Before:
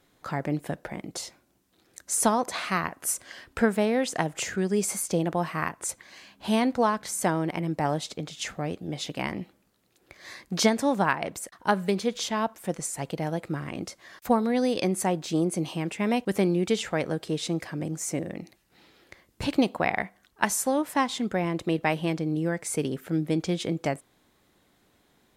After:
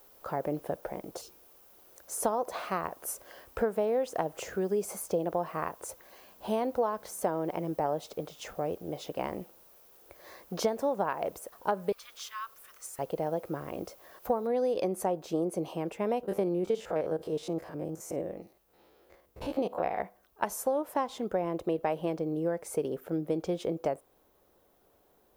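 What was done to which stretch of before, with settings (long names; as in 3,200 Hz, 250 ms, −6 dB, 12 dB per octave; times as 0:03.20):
0:01.21–0:01.72: time-frequency box erased 500–2,300 Hz
0:11.92–0:12.99: Butterworth high-pass 1,100 Hz 96 dB per octave
0:14.47: noise floor change −55 dB −69 dB
0:16.23–0:19.99: spectrum averaged block by block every 50 ms
whole clip: octave-band graphic EQ 125/250/500/2,000/4,000/8,000 Hz −9/−7/+6/−10/−8/−11 dB; downward compressor 3 to 1, threshold −26 dBFS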